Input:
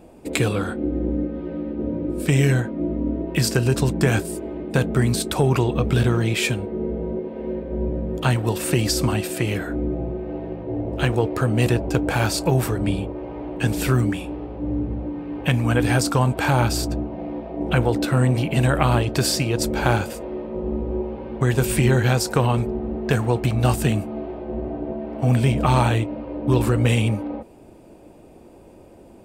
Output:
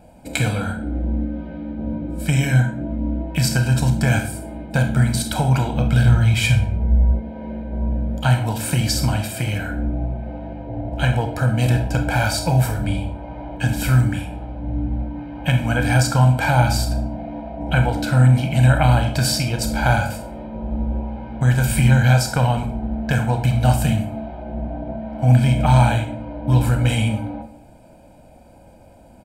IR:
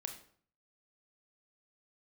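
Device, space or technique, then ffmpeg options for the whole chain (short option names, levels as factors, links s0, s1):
microphone above a desk: -filter_complex "[0:a]asplit=3[s0][s1][s2];[s0]afade=t=out:st=6.07:d=0.02[s3];[s1]asubboost=boost=7.5:cutoff=100,afade=t=in:st=6.07:d=0.02,afade=t=out:st=7.12:d=0.02[s4];[s2]afade=t=in:st=7.12:d=0.02[s5];[s3][s4][s5]amix=inputs=3:normalize=0,aecho=1:1:1.3:0.82[s6];[1:a]atrim=start_sample=2205[s7];[s6][s7]afir=irnorm=-1:irlink=0,volume=1.12"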